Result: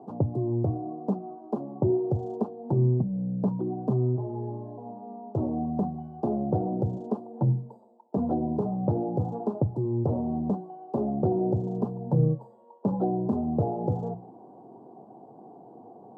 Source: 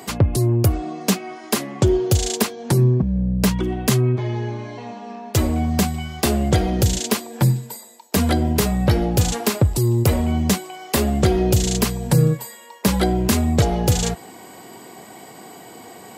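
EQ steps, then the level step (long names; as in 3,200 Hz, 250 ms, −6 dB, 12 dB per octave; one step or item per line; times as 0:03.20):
elliptic band-pass filter 110–840 Hz, stop band 40 dB
mains-hum notches 60/120/180 Hz
−6.0 dB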